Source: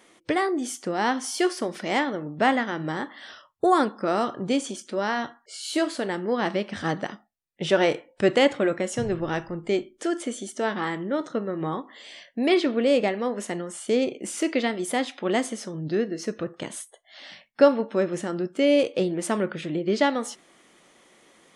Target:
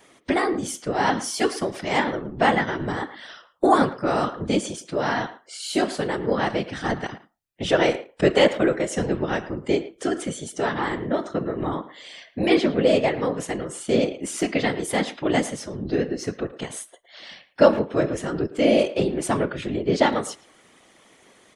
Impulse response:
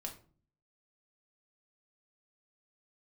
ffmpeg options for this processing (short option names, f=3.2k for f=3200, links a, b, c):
-filter_complex "[0:a]afftfilt=real='hypot(re,im)*cos(2*PI*random(0))':imag='hypot(re,im)*sin(2*PI*random(1))':win_size=512:overlap=0.75,asplit=2[a][b];[b]adelay=110,highpass=300,lowpass=3.4k,asoftclip=type=hard:threshold=-19dB,volume=-15dB[c];[a][c]amix=inputs=2:normalize=0,volume=8dB"